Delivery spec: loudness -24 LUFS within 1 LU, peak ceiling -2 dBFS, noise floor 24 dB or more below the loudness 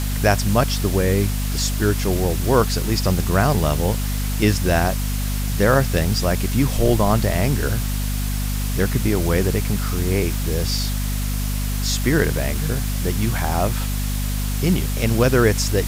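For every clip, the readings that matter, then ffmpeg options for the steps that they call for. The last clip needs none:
hum 50 Hz; highest harmonic 250 Hz; hum level -20 dBFS; noise floor -23 dBFS; noise floor target -45 dBFS; loudness -20.5 LUFS; peak level -2.5 dBFS; loudness target -24.0 LUFS
-> -af "bandreject=f=50:t=h:w=6,bandreject=f=100:t=h:w=6,bandreject=f=150:t=h:w=6,bandreject=f=200:t=h:w=6,bandreject=f=250:t=h:w=6"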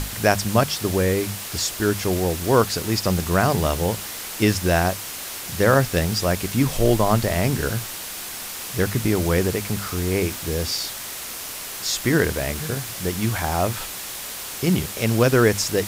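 hum not found; noise floor -33 dBFS; noise floor target -46 dBFS
-> -af "afftdn=nr=13:nf=-33"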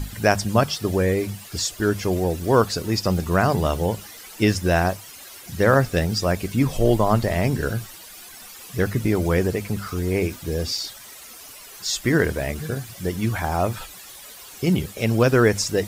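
noise floor -42 dBFS; noise floor target -47 dBFS
-> -af "afftdn=nr=6:nf=-42"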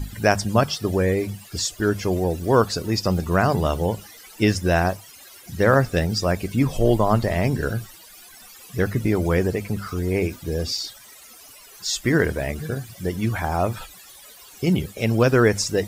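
noise floor -46 dBFS; noise floor target -47 dBFS
-> -af "afftdn=nr=6:nf=-46"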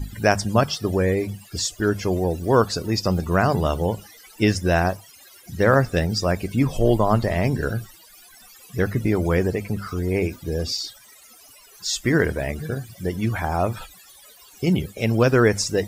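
noise floor -49 dBFS; loudness -22.5 LUFS; peak level -2.5 dBFS; loudness target -24.0 LUFS
-> -af "volume=0.841"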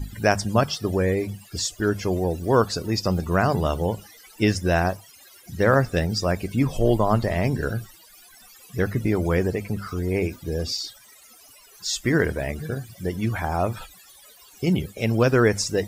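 loudness -24.0 LUFS; peak level -4.0 dBFS; noise floor -51 dBFS

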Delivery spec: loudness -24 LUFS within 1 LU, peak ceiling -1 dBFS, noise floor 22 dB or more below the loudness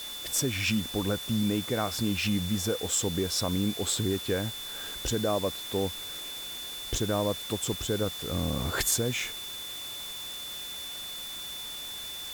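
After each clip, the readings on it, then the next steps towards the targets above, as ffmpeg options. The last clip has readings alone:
steady tone 3.5 kHz; tone level -38 dBFS; noise floor -39 dBFS; noise floor target -52 dBFS; loudness -30.0 LUFS; peak level -15.0 dBFS; loudness target -24.0 LUFS
-> -af "bandreject=f=3500:w=30"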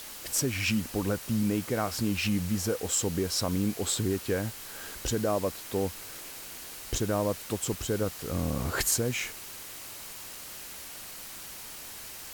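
steady tone not found; noise floor -43 dBFS; noise floor target -53 dBFS
-> -af "afftdn=nr=10:nf=-43"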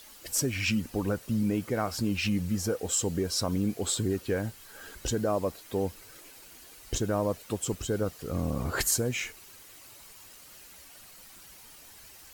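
noise floor -51 dBFS; noise floor target -52 dBFS
-> -af "afftdn=nr=6:nf=-51"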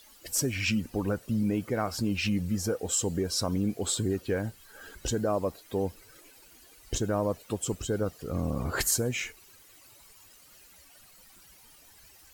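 noise floor -56 dBFS; loudness -30.0 LUFS; peak level -15.0 dBFS; loudness target -24.0 LUFS
-> -af "volume=2"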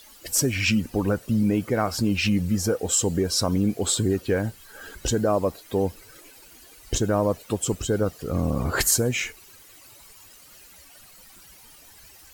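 loudness -24.0 LUFS; peak level -9.0 dBFS; noise floor -50 dBFS

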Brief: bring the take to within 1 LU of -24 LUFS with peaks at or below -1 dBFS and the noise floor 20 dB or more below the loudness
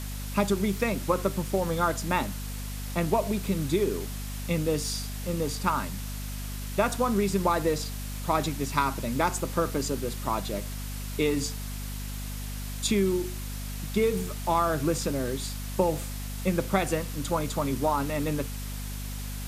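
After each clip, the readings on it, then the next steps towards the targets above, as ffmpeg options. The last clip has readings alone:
hum 50 Hz; highest harmonic 250 Hz; hum level -33 dBFS; noise floor -35 dBFS; noise floor target -49 dBFS; loudness -29.0 LUFS; peak level -8.5 dBFS; loudness target -24.0 LUFS
-> -af "bandreject=f=50:t=h:w=6,bandreject=f=100:t=h:w=6,bandreject=f=150:t=h:w=6,bandreject=f=200:t=h:w=6,bandreject=f=250:t=h:w=6"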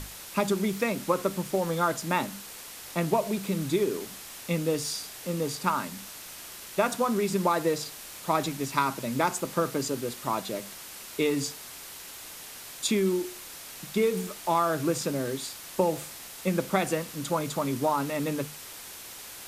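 hum not found; noise floor -44 dBFS; noise floor target -49 dBFS
-> -af "afftdn=nr=6:nf=-44"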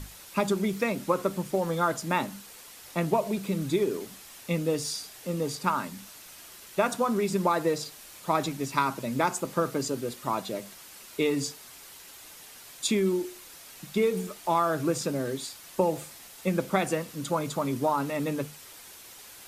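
noise floor -48 dBFS; noise floor target -49 dBFS
-> -af "afftdn=nr=6:nf=-48"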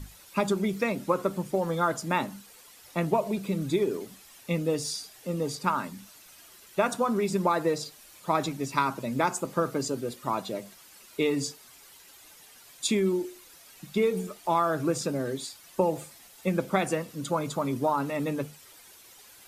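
noise floor -53 dBFS; loudness -29.0 LUFS; peak level -9.0 dBFS; loudness target -24.0 LUFS
-> -af "volume=1.78"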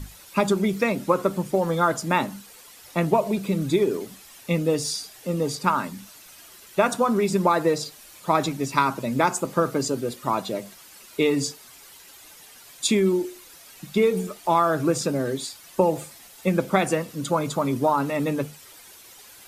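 loudness -24.0 LUFS; peak level -4.0 dBFS; noise floor -48 dBFS

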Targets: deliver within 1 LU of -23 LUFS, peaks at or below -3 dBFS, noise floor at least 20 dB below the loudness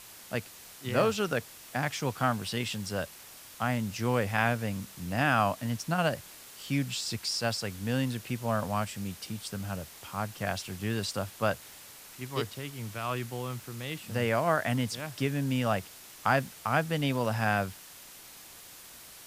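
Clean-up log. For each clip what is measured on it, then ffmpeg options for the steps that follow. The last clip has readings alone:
noise floor -50 dBFS; noise floor target -52 dBFS; loudness -31.5 LUFS; peak level -10.0 dBFS; loudness target -23.0 LUFS
-> -af "afftdn=nr=6:nf=-50"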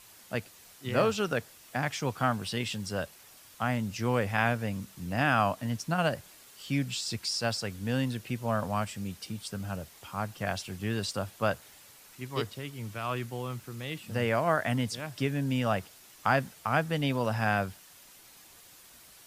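noise floor -55 dBFS; loudness -31.5 LUFS; peak level -10.0 dBFS; loudness target -23.0 LUFS
-> -af "volume=2.66,alimiter=limit=0.708:level=0:latency=1"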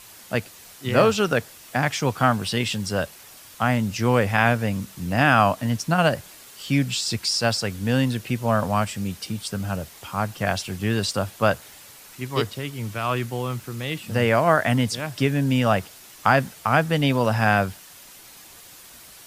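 loudness -23.0 LUFS; peak level -3.0 dBFS; noise floor -46 dBFS

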